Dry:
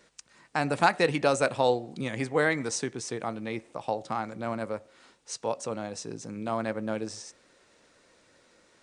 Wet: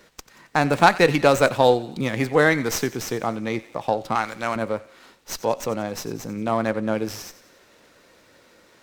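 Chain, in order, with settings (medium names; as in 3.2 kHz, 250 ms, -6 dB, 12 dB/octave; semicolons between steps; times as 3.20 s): 4.15–4.56 s: tilt shelf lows -9.5 dB, about 830 Hz; feedback echo behind a high-pass 90 ms, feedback 52%, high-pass 1.6 kHz, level -15.5 dB; sliding maximum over 3 samples; trim +7.5 dB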